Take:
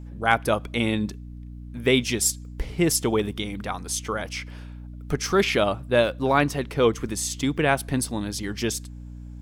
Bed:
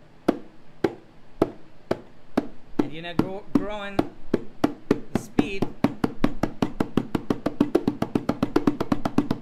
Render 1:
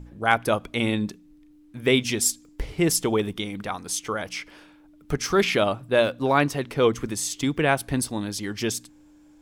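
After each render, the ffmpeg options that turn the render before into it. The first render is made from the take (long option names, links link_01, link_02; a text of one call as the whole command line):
ffmpeg -i in.wav -af "bandreject=frequency=60:width_type=h:width=4,bandreject=frequency=120:width_type=h:width=4,bandreject=frequency=180:width_type=h:width=4,bandreject=frequency=240:width_type=h:width=4" out.wav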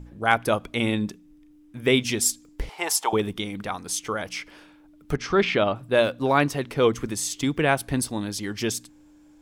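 ffmpeg -i in.wav -filter_complex "[0:a]asettb=1/sr,asplit=3[link_01][link_02][link_03];[link_01]atrim=end=0.754[link_04];[link_02]atrim=start=0.75:end=1.99,asetpts=PTS-STARTPTS,afade=type=in:duration=0.004:curve=qsin,afade=type=out:start_time=1.236:duration=0.004:curve=qsin,bandreject=frequency=4200:width=12[link_05];[link_03]atrim=start=1.986[link_06];[link_04][link_05]acrossfade=duration=0.004:curve1=hsin:curve2=qsin[link_07];[link_07][link_06]acrossfade=duration=0.004:curve1=qsin:curve2=hsin,asettb=1/sr,asplit=3[link_08][link_09][link_10];[link_08]atrim=end=2.694[link_11];[link_09]atrim=start=2.69:end=3.13,asetpts=PTS-STARTPTS,afade=type=in:duration=0.004:curve=qsin,afade=type=out:start_time=0.436:duration=0.004:curve=qsin,highpass=frequency=850:width_type=q:width=5.7[link_12];[link_10]atrim=start=3.126[link_13];[link_11][link_12]acrossfade=duration=0.004:curve1=hsin:curve2=qsin[link_14];[link_14][link_13]acrossfade=duration=0.004:curve1=qsin:curve2=hsin,asettb=1/sr,asplit=3[link_15][link_16][link_17];[link_15]atrim=end=5.164[link_18];[link_16]atrim=start=5.16:end=5.76,asetpts=PTS-STARTPTS,afade=type=in:duration=0.004:curve=qsin,afade=type=out:start_time=0.596:duration=0.004:curve=qsin,lowpass=3800[link_19];[link_17]atrim=start=5.756[link_20];[link_18][link_19]acrossfade=duration=0.004:curve1=hsin:curve2=qsin[link_21];[link_21][link_20]acrossfade=duration=0.004:curve1=qsin:curve2=hsin" out.wav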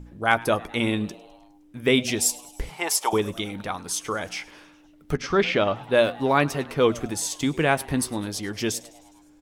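ffmpeg -i in.wav -filter_complex "[0:a]asplit=2[link_01][link_02];[link_02]adelay=12,volume=-14dB[link_03];[link_01][link_03]amix=inputs=2:normalize=0,asplit=6[link_04][link_05][link_06][link_07][link_08][link_09];[link_05]adelay=103,afreqshift=120,volume=-22dB[link_10];[link_06]adelay=206,afreqshift=240,volume=-25.7dB[link_11];[link_07]adelay=309,afreqshift=360,volume=-29.5dB[link_12];[link_08]adelay=412,afreqshift=480,volume=-33.2dB[link_13];[link_09]adelay=515,afreqshift=600,volume=-37dB[link_14];[link_04][link_10][link_11][link_12][link_13][link_14]amix=inputs=6:normalize=0" out.wav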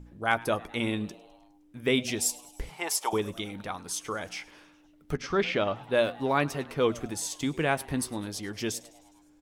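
ffmpeg -i in.wav -af "volume=-5.5dB" out.wav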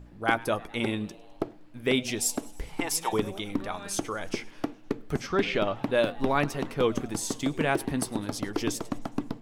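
ffmpeg -i in.wav -i bed.wav -filter_complex "[1:a]volume=-9.5dB[link_01];[0:a][link_01]amix=inputs=2:normalize=0" out.wav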